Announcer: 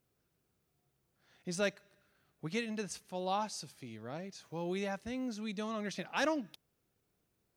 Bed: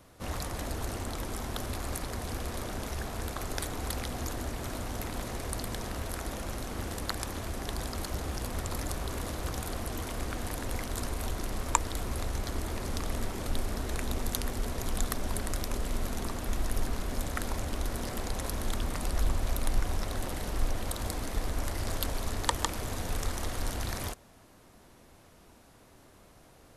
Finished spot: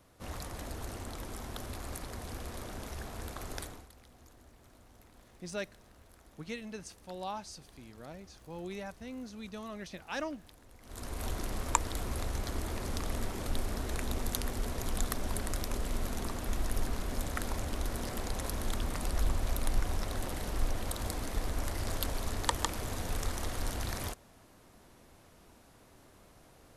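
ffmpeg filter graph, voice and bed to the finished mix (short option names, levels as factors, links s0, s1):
-filter_complex "[0:a]adelay=3950,volume=0.596[s0];[1:a]volume=5.62,afade=t=out:st=3.58:d=0.29:silence=0.141254,afade=t=in:st=10.81:d=0.48:silence=0.0891251[s1];[s0][s1]amix=inputs=2:normalize=0"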